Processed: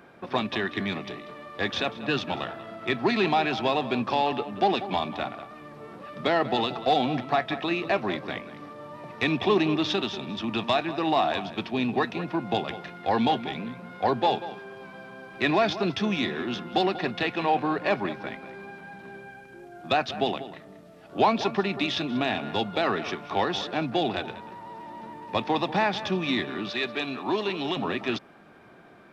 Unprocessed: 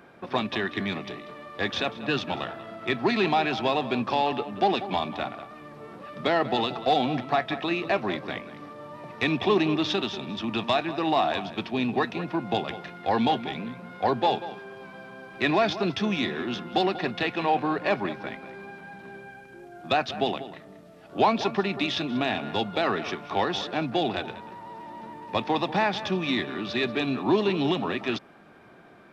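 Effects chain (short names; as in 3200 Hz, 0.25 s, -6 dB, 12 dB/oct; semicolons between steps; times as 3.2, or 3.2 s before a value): 26.69–27.77 low shelf 330 Hz -11.5 dB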